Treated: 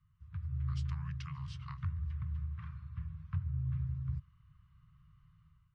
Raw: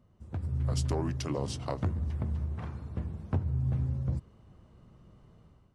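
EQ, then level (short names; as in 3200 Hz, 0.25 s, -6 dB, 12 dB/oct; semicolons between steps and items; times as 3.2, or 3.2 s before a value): Chebyshev band-stop 160–1100 Hz, order 4; LPF 3000 Hz 12 dB/oct; -5.0 dB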